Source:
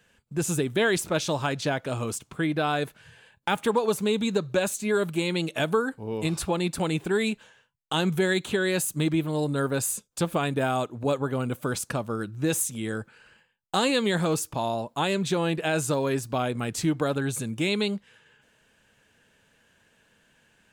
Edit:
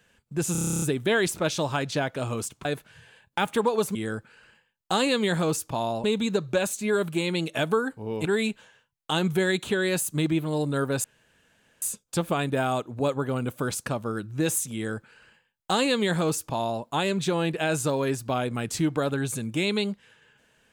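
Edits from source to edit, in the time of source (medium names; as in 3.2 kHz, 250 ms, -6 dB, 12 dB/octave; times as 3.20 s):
0.52 s: stutter 0.03 s, 11 plays
2.35–2.75 s: delete
6.26–7.07 s: delete
9.86 s: insert room tone 0.78 s
12.78–14.87 s: copy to 4.05 s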